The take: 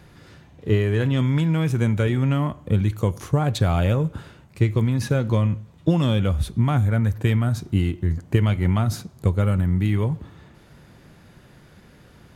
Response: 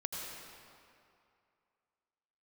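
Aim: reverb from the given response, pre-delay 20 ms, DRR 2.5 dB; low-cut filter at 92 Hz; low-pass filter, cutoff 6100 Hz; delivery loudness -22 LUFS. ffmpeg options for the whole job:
-filter_complex "[0:a]highpass=92,lowpass=6.1k,asplit=2[a][b];[1:a]atrim=start_sample=2205,adelay=20[c];[b][c]afir=irnorm=-1:irlink=0,volume=-4.5dB[d];[a][d]amix=inputs=2:normalize=0,volume=-1dB"

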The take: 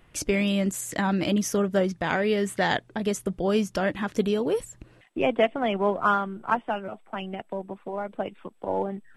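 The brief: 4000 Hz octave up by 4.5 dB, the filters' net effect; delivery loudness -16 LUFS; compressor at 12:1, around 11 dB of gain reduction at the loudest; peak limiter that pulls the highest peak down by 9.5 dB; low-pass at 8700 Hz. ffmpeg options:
-af "lowpass=8.7k,equalizer=f=4k:t=o:g=6.5,acompressor=threshold=-28dB:ratio=12,volume=20dB,alimiter=limit=-5.5dB:level=0:latency=1"

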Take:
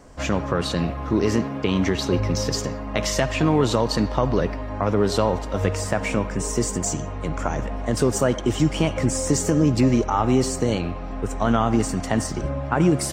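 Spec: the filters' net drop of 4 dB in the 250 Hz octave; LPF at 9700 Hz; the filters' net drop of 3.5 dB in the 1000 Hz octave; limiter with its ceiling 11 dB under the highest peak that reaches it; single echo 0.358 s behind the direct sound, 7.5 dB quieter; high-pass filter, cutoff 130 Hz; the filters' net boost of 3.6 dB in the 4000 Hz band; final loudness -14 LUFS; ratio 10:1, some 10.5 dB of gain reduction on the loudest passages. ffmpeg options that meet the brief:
-af "highpass=130,lowpass=9.7k,equalizer=f=250:t=o:g=-4.5,equalizer=f=1k:t=o:g=-4.5,equalizer=f=4k:t=o:g=5,acompressor=threshold=-28dB:ratio=10,alimiter=limit=-23.5dB:level=0:latency=1,aecho=1:1:358:0.422,volume=19.5dB"

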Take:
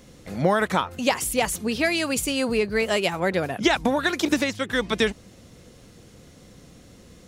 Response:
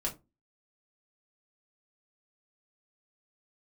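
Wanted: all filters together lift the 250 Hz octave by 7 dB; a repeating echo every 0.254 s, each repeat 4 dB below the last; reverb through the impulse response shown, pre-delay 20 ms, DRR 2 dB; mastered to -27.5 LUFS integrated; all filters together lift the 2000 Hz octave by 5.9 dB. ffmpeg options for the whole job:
-filter_complex "[0:a]equalizer=f=250:t=o:g=8.5,equalizer=f=2k:t=o:g=7,aecho=1:1:254|508|762|1016|1270|1524|1778|2032|2286:0.631|0.398|0.25|0.158|0.0994|0.0626|0.0394|0.0249|0.0157,asplit=2[a][b];[1:a]atrim=start_sample=2205,adelay=20[c];[b][c]afir=irnorm=-1:irlink=0,volume=-5dB[d];[a][d]amix=inputs=2:normalize=0,volume=-13dB"

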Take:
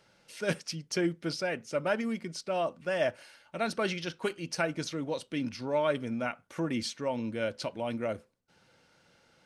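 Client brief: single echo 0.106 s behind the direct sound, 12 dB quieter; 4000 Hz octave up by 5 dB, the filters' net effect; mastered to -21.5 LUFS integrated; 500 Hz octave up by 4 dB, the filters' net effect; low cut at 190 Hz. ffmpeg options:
-af "highpass=190,equalizer=f=500:t=o:g=5,equalizer=f=4k:t=o:g=6.5,aecho=1:1:106:0.251,volume=8.5dB"

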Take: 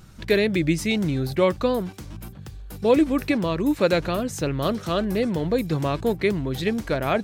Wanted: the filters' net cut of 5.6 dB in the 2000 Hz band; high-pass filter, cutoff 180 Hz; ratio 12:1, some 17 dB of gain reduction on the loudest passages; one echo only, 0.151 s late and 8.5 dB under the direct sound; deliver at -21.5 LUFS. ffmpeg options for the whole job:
-af "highpass=180,equalizer=f=2k:t=o:g=-7,acompressor=threshold=-32dB:ratio=12,aecho=1:1:151:0.376,volume=15dB"

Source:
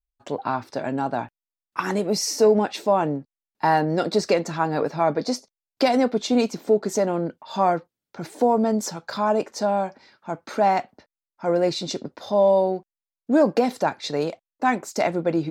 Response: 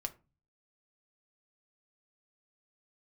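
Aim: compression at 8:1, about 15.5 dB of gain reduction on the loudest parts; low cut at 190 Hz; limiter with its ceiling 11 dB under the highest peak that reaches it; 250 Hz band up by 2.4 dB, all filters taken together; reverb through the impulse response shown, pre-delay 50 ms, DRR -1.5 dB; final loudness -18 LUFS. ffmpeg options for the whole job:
-filter_complex "[0:a]highpass=190,equalizer=f=250:t=o:g=4.5,acompressor=threshold=-28dB:ratio=8,alimiter=limit=-24dB:level=0:latency=1,asplit=2[a][b];[1:a]atrim=start_sample=2205,adelay=50[c];[b][c]afir=irnorm=-1:irlink=0,volume=2.5dB[d];[a][d]amix=inputs=2:normalize=0,volume=13dB"

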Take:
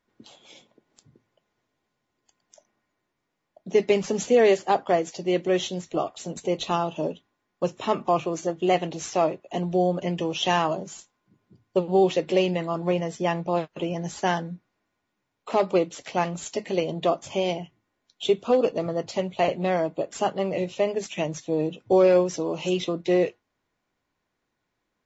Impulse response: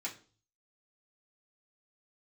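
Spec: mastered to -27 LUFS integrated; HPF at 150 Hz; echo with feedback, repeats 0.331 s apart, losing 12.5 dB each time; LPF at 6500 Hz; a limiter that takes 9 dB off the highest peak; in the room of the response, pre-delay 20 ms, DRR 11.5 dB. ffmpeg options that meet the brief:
-filter_complex "[0:a]highpass=150,lowpass=6.5k,alimiter=limit=-18dB:level=0:latency=1,aecho=1:1:331|662|993:0.237|0.0569|0.0137,asplit=2[a][b];[1:a]atrim=start_sample=2205,adelay=20[c];[b][c]afir=irnorm=-1:irlink=0,volume=-12.5dB[d];[a][d]amix=inputs=2:normalize=0,volume=2dB"

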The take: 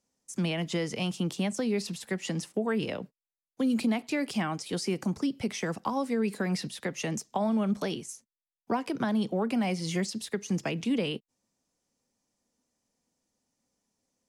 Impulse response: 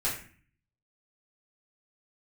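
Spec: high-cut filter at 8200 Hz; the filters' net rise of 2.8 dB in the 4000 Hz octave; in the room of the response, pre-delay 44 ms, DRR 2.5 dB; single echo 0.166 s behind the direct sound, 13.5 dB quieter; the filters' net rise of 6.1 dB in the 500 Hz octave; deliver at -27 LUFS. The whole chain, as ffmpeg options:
-filter_complex "[0:a]lowpass=8.2k,equalizer=f=500:t=o:g=7.5,equalizer=f=4k:t=o:g=4,aecho=1:1:166:0.211,asplit=2[a][b];[1:a]atrim=start_sample=2205,adelay=44[c];[b][c]afir=irnorm=-1:irlink=0,volume=-10dB[d];[a][d]amix=inputs=2:normalize=0,volume=-0.5dB"

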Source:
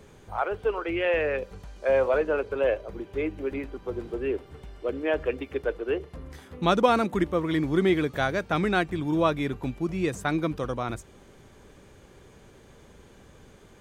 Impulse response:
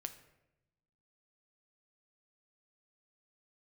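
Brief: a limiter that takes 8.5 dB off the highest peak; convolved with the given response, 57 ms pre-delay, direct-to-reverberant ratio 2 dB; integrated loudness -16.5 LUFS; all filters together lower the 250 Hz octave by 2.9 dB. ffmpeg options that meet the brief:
-filter_complex "[0:a]equalizer=f=250:t=o:g=-4.5,alimiter=limit=-17dB:level=0:latency=1,asplit=2[a][b];[1:a]atrim=start_sample=2205,adelay=57[c];[b][c]afir=irnorm=-1:irlink=0,volume=1dB[d];[a][d]amix=inputs=2:normalize=0,volume=11.5dB"

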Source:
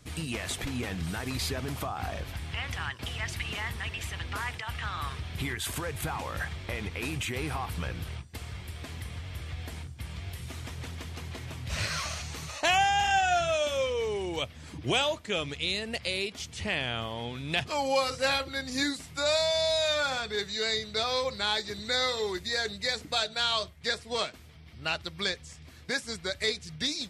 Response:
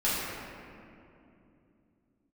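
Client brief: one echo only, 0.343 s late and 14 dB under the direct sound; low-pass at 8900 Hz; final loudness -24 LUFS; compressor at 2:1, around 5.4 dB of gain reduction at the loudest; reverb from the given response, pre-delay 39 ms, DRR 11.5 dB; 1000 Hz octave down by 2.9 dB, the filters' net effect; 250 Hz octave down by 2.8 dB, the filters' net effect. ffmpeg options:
-filter_complex "[0:a]lowpass=8.9k,equalizer=f=250:t=o:g=-3.5,equalizer=f=1k:t=o:g=-4,acompressor=threshold=-33dB:ratio=2,aecho=1:1:343:0.2,asplit=2[a][b];[1:a]atrim=start_sample=2205,adelay=39[c];[b][c]afir=irnorm=-1:irlink=0,volume=-23dB[d];[a][d]amix=inputs=2:normalize=0,volume=11dB"

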